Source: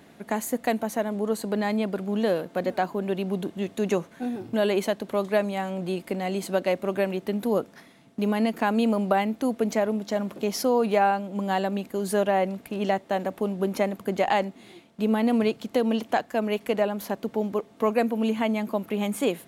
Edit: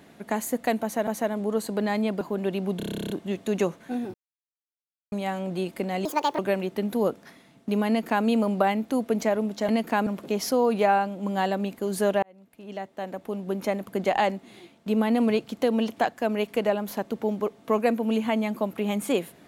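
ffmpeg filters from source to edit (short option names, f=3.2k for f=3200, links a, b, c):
-filter_complex "[0:a]asplit=21[a][b][c][d][e][f][g][h][i][j][k][l][m][n][o][p][q][r][s][t][u];[a]atrim=end=1.072[v];[b]atrim=start=0.818:end=1.962[w];[c]atrim=start=2.848:end=3.442[x];[d]atrim=start=3.408:end=3.442[y];[e]atrim=start=3.408:end=3.442[z];[f]atrim=start=3.408:end=3.442[aa];[g]atrim=start=3.408:end=3.442[ab];[h]atrim=start=3.408:end=3.442[ac];[i]atrim=start=3.408:end=3.442[ad];[j]atrim=start=3.408:end=3.442[ae];[k]atrim=start=3.408:end=3.442[af];[l]atrim=start=3.408:end=3.442[ag];[m]atrim=start=3.408:end=3.442[ah];[n]atrim=start=3.408:end=4.45,asetpts=PTS-STARTPTS,afade=t=out:st=1.038:d=0.004:c=hsin[ai];[o]atrim=start=4.45:end=5.43,asetpts=PTS-STARTPTS,volume=0[aj];[p]atrim=start=5.43:end=6.364,asetpts=PTS-STARTPTS,afade=t=in:d=0.004:c=hsin[ak];[q]atrim=start=6.36:end=6.89,asetpts=PTS-STARTPTS,asetrate=69678,aresample=44100,atrim=end_sample=14793,asetpts=PTS-STARTPTS[al];[r]atrim=start=6.886:end=10.192[am];[s]atrim=start=8.378:end=8.762[an];[t]atrim=start=10.188:end=12.35,asetpts=PTS-STARTPTS,afade=t=out:st=2.158:d=0.004:c=hsin[ao];[u]atrim=start=12.35,asetpts=PTS-STARTPTS,afade=t=in:d=1.86[ap];[v][w]acrossfade=d=0.004:c1=hsin:c2=hsin[aq];[aq][x]acrossfade=d=0.004:c1=hsin:c2=hsin[ar];[ar][y]acrossfade=d=0.004:c1=hsin:c2=hsin[as];[as][z]acrossfade=d=0.004:c1=hsin:c2=hsin[at];[at][aa]acrossfade=d=0.004:c1=hsin:c2=hsin[au];[au][ab]acrossfade=d=0.004:c1=hsin:c2=hsin[av];[av][ac]acrossfade=d=0.004:c1=hsin:c2=hsin[aw];[aw][ad]acrossfade=d=0.004:c1=hsin:c2=hsin[ax];[ax][ae]acrossfade=d=0.004:c1=hsin:c2=hsin[ay];[ay][af]acrossfade=d=0.004:c1=hsin:c2=hsin[az];[az][ag]acrossfade=d=0.004:c1=hsin:c2=hsin[ba];[ba][ah]acrossfade=d=0.004:c1=hsin:c2=hsin[bb];[ai][aj][ak]concat=n=3:v=0:a=1[bc];[bb][bc]acrossfade=d=0.004:c1=hsin:c2=hsin[bd];[bd][al]acrossfade=d=0.004:c1=hsin:c2=hsin[be];[be][am]acrossfade=d=0.004:c1=hsin:c2=hsin[bf];[bf][an]acrossfade=d=0.004:c1=hsin:c2=hsin[bg];[ao][ap]concat=n=2:v=0:a=1[bh];[bg][bh]acrossfade=d=0.004:c1=hsin:c2=hsin"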